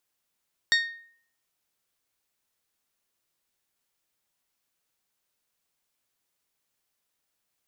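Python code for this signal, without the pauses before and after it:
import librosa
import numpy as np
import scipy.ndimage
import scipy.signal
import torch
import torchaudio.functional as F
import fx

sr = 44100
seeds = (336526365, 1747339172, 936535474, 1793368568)

y = fx.strike_glass(sr, length_s=0.89, level_db=-17.5, body='bell', hz=1850.0, decay_s=0.56, tilt_db=3.5, modes=5)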